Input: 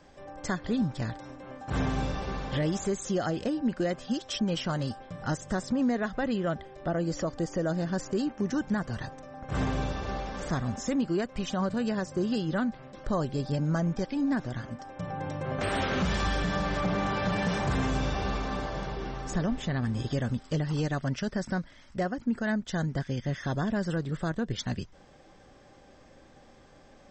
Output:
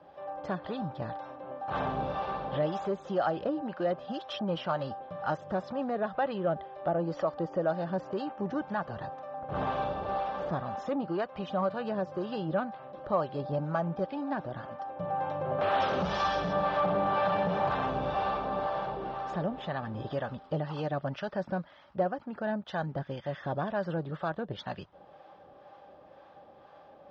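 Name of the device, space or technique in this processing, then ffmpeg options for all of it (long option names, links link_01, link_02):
guitar amplifier with harmonic tremolo: -filter_complex "[0:a]asettb=1/sr,asplit=3[link_01][link_02][link_03];[link_01]atrim=end=15.804[link_04];[link_02]atrim=start=15.8:end=16.53,asetpts=PTS-STARTPTS,afade=type=in:duration=0.004:curve=qsin,afade=type=out:start_time=0.726:duration=0.004:curve=qsin,equalizer=frequency=5800:width=1.7:gain=14[link_05];[link_03]atrim=start=16.526[link_06];[link_04][link_05]acrossfade=duration=0.004:curve1=hsin:curve2=qsin[link_07];[link_07][link_06]acrossfade=duration=0.004:curve1=qsin:curve2=hsin,acrossover=split=630[link_08][link_09];[link_08]aeval=exprs='val(0)*(1-0.5/2+0.5/2*cos(2*PI*2*n/s))':channel_layout=same[link_10];[link_09]aeval=exprs='val(0)*(1-0.5/2-0.5/2*cos(2*PI*2*n/s))':channel_layout=same[link_11];[link_10][link_11]amix=inputs=2:normalize=0,asoftclip=type=tanh:threshold=-22dB,highpass=110,equalizer=frequency=120:width_type=q:width=4:gain=-5,equalizer=frequency=240:width_type=q:width=4:gain=-7,equalizer=frequency=590:width_type=q:width=4:gain=8,equalizer=frequency=830:width_type=q:width=4:gain=9,equalizer=frequency=1200:width_type=q:width=4:gain=6,equalizer=frequency=2100:width_type=q:width=4:gain=-6,lowpass=frequency=3700:width=0.5412,lowpass=frequency=3700:width=1.3066"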